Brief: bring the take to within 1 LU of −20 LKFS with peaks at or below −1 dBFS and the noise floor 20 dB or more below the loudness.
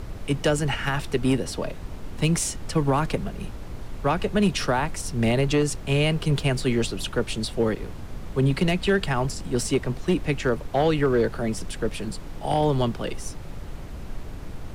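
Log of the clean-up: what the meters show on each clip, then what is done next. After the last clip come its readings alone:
share of clipped samples 0.5%; peaks flattened at −13.5 dBFS; background noise floor −37 dBFS; target noise floor −45 dBFS; integrated loudness −25.0 LKFS; sample peak −13.5 dBFS; target loudness −20.0 LKFS
→ clipped peaks rebuilt −13.5 dBFS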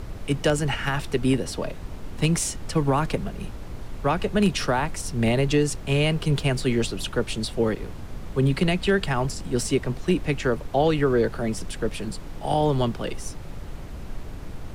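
share of clipped samples 0.0%; background noise floor −37 dBFS; target noise floor −45 dBFS
→ noise reduction from a noise print 8 dB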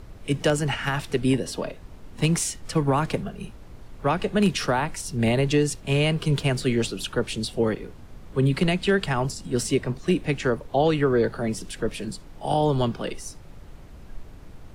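background noise floor −44 dBFS; target noise floor −45 dBFS
→ noise reduction from a noise print 6 dB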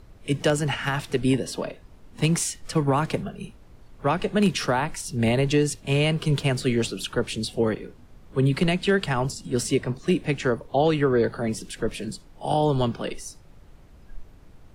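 background noise floor −50 dBFS; integrated loudness −25.0 LKFS; sample peak −8.5 dBFS; target loudness −20.0 LKFS
→ level +5 dB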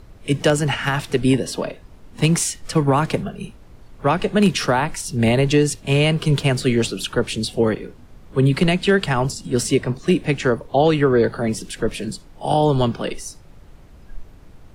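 integrated loudness −20.0 LKFS; sample peak −3.5 dBFS; background noise floor −45 dBFS

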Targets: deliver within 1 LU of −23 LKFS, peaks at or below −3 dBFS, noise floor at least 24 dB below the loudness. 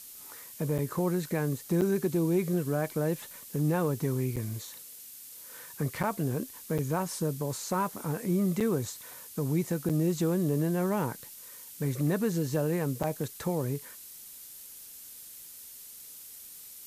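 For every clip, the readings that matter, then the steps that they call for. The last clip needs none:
number of dropouts 8; longest dropout 6.8 ms; background noise floor −48 dBFS; target noise floor −55 dBFS; integrated loudness −30.5 LKFS; sample peak −17.5 dBFS; target loudness −23.0 LKFS
→ repair the gap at 0:00.78/0:01.81/0:04.36/0:06.03/0:06.78/0:08.60/0:09.89/0:13.03, 6.8 ms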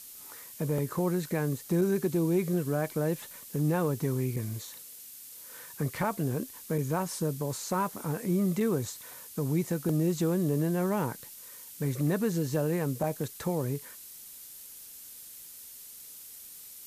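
number of dropouts 0; background noise floor −48 dBFS; target noise floor −55 dBFS
→ noise reduction from a noise print 7 dB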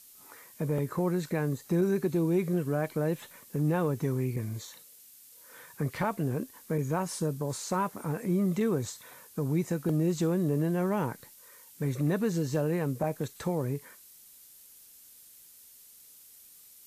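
background noise floor −55 dBFS; integrated loudness −30.5 LKFS; sample peak −17.5 dBFS; target loudness −23.0 LKFS
→ level +7.5 dB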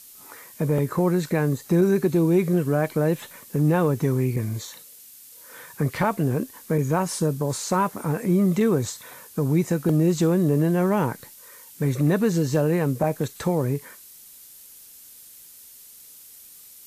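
integrated loudness −23.0 LKFS; sample peak −10.0 dBFS; background noise floor −47 dBFS

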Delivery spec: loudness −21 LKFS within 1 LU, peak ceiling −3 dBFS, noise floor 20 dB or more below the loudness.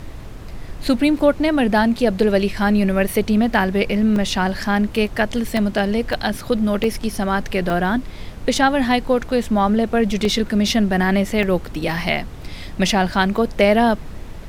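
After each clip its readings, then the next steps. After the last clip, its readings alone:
number of dropouts 8; longest dropout 2.0 ms; background noise floor −34 dBFS; target noise floor −39 dBFS; integrated loudness −19.0 LKFS; sample peak −2.5 dBFS; target loudness −21.0 LKFS
→ repair the gap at 0:04.16/0:05.57/0:06.13/0:06.84/0:07.70/0:10.25/0:11.43/0:13.14, 2 ms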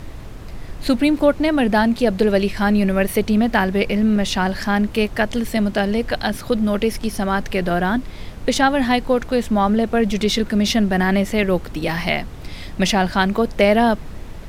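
number of dropouts 0; background noise floor −34 dBFS; target noise floor −39 dBFS
→ noise reduction from a noise print 6 dB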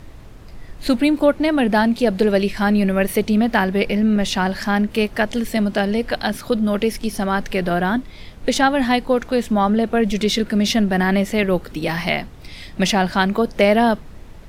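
background noise floor −39 dBFS; integrated loudness −19.0 LKFS; sample peak −3.0 dBFS; target loudness −21.0 LKFS
→ level −2 dB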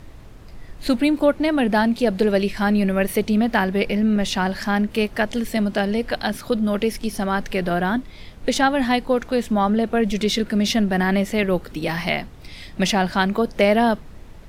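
integrated loudness −21.0 LKFS; sample peak −5.0 dBFS; background noise floor −41 dBFS

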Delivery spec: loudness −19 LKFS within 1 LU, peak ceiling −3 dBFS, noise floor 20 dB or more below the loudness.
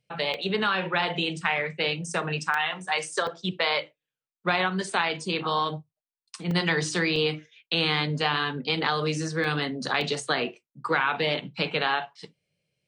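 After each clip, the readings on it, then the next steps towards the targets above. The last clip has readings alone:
number of dropouts 7; longest dropout 2.2 ms; integrated loudness −26.5 LKFS; sample peak −9.5 dBFS; target loudness −19.0 LKFS
→ repair the gap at 0:00.34/0:02.54/0:03.27/0:06.51/0:07.16/0:09.44/0:10.01, 2.2 ms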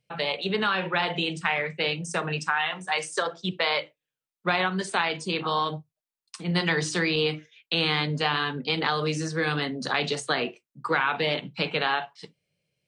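number of dropouts 0; integrated loudness −26.5 LKFS; sample peak −9.5 dBFS; target loudness −19.0 LKFS
→ level +7.5 dB
brickwall limiter −3 dBFS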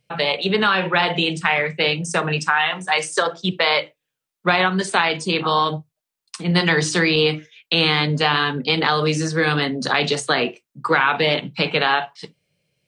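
integrated loudness −19.5 LKFS; sample peak −3.0 dBFS; background noise floor −84 dBFS

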